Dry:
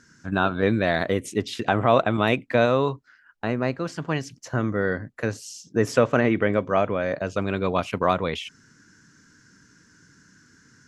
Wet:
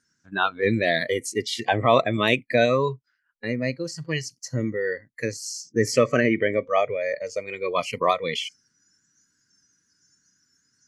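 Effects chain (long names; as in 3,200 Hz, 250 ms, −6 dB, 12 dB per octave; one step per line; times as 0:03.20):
high-shelf EQ 2,600 Hz +10.5 dB
noise reduction from a noise print of the clip's start 20 dB
high-shelf EQ 9,300 Hz −9.5 dB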